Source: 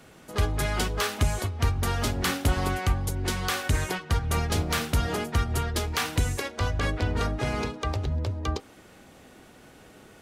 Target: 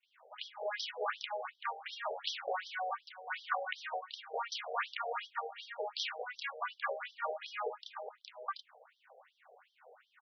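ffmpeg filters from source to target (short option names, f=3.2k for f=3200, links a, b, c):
-filter_complex "[0:a]acrossover=split=3900[a][b];[a]adelay=30[c];[c][b]amix=inputs=2:normalize=0,adynamicsmooth=sensitivity=7.5:basefreq=2.1k,afftfilt=real='re*between(b*sr/1024,570*pow(4400/570,0.5+0.5*sin(2*PI*2.7*pts/sr))/1.41,570*pow(4400/570,0.5+0.5*sin(2*PI*2.7*pts/sr))*1.41)':imag='im*between(b*sr/1024,570*pow(4400/570,0.5+0.5*sin(2*PI*2.7*pts/sr))/1.41,570*pow(4400/570,0.5+0.5*sin(2*PI*2.7*pts/sr))*1.41)':win_size=1024:overlap=0.75"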